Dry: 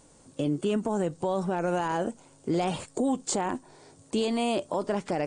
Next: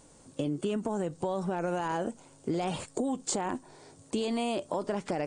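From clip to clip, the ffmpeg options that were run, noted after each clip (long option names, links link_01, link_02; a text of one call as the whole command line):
ffmpeg -i in.wav -af "acompressor=threshold=-27dB:ratio=6" out.wav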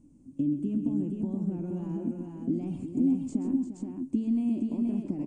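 ffmpeg -i in.wav -filter_complex "[0:a]firequalizer=gain_entry='entry(160,0);entry(270,9);entry(450,-18);entry(1700,-28);entry(2500,-19);entry(3700,-29);entry(6200,-21)':delay=0.05:min_phase=1,asplit=2[link_01][link_02];[link_02]aecho=0:1:131|348|475:0.299|0.335|0.631[link_03];[link_01][link_03]amix=inputs=2:normalize=0" out.wav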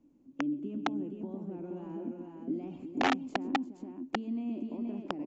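ffmpeg -i in.wav -filter_complex "[0:a]aeval=exprs='(mod(8.91*val(0)+1,2)-1)/8.91':channel_layout=same,aresample=16000,aresample=44100,acrossover=split=290 4300:gain=0.141 1 0.178[link_01][link_02][link_03];[link_01][link_02][link_03]amix=inputs=3:normalize=0" out.wav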